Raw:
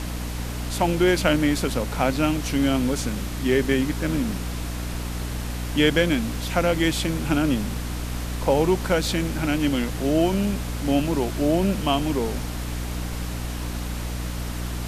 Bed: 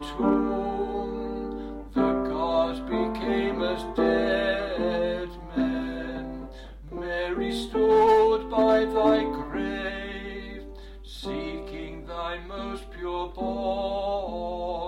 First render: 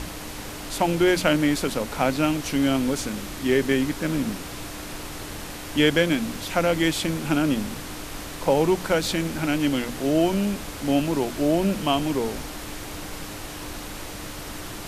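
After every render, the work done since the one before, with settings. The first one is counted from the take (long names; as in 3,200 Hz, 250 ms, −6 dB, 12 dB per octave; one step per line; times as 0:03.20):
mains-hum notches 60/120/180/240 Hz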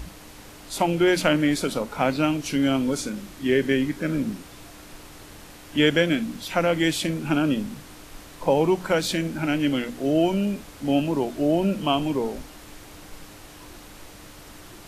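noise reduction from a noise print 9 dB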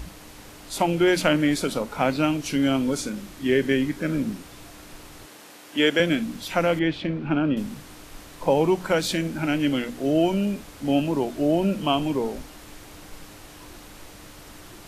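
0:05.26–0:06.00: high-pass filter 270 Hz
0:06.79–0:07.57: high-frequency loss of the air 320 metres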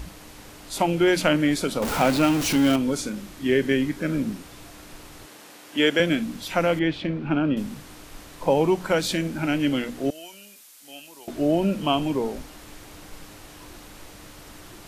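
0:01.82–0:02.76: converter with a step at zero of −23 dBFS
0:10.10–0:11.28: first difference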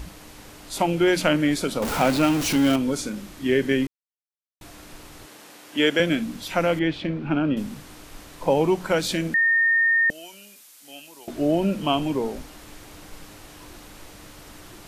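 0:03.87–0:04.61: silence
0:09.34–0:10.10: beep over 1,830 Hz −16 dBFS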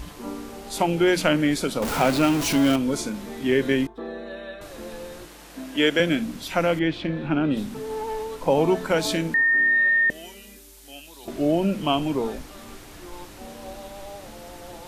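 mix in bed −12 dB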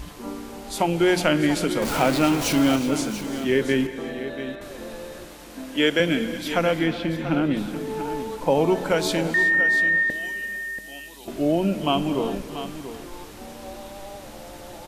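single-tap delay 686 ms −11.5 dB
reverb whose tail is shaped and stops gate 400 ms rising, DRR 11.5 dB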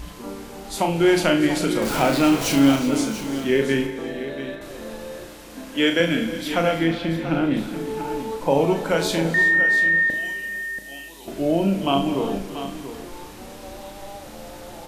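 flutter between parallel walls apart 6.2 metres, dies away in 0.33 s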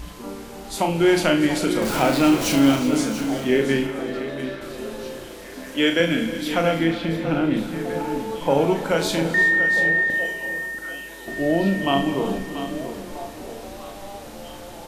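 echo through a band-pass that steps 643 ms, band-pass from 210 Hz, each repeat 1.4 octaves, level −8 dB
dense smooth reverb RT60 4.8 s, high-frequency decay 0.75×, DRR 17 dB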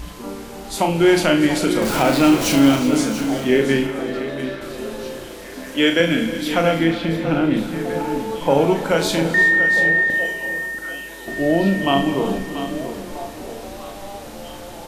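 level +3 dB
brickwall limiter −3 dBFS, peak gain reduction 2 dB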